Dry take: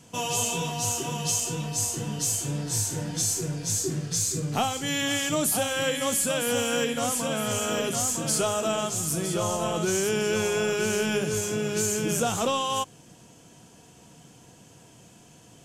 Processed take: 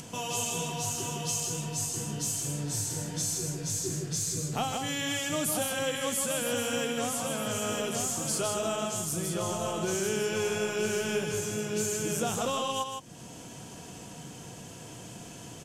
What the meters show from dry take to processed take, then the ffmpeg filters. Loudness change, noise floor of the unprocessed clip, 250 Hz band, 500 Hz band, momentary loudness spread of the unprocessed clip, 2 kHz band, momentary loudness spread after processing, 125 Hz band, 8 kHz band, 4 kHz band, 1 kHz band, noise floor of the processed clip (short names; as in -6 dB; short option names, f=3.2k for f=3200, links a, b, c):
-4.5 dB, -53 dBFS, -4.5 dB, -4.0 dB, 3 LU, -4.5 dB, 15 LU, -4.0 dB, -4.0 dB, -4.5 dB, -4.5 dB, -46 dBFS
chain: -filter_complex "[0:a]acompressor=mode=upward:threshold=-28dB:ratio=2.5,asplit=2[a][b];[b]aecho=0:1:158:0.562[c];[a][c]amix=inputs=2:normalize=0,volume=-5.5dB"